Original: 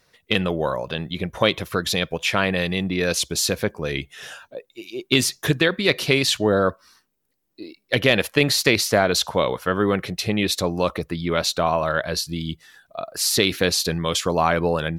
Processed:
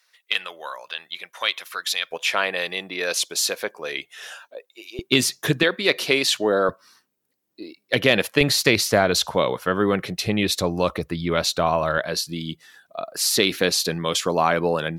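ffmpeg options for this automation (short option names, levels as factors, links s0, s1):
-af "asetnsamples=n=441:p=0,asendcmd='2.11 highpass f 530;4.99 highpass f 130;5.63 highpass f 290;6.69 highpass f 130;8.41 highpass f 53;9.35 highpass f 110;10.26 highpass f 48;11.98 highpass f 170',highpass=1300"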